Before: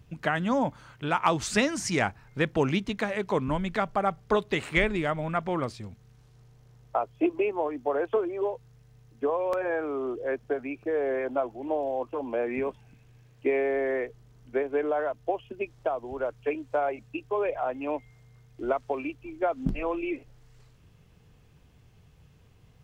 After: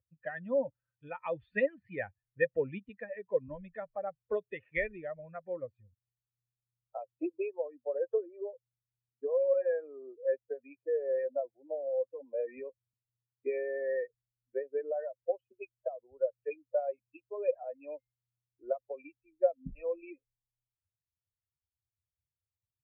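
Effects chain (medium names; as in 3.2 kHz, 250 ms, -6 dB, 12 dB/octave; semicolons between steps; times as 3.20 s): expander on every frequency bin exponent 2; cascade formant filter e; trim +7.5 dB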